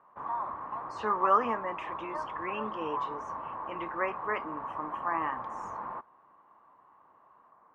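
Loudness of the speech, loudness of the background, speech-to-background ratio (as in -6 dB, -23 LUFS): -33.5 LUFS, -38.0 LUFS, 4.5 dB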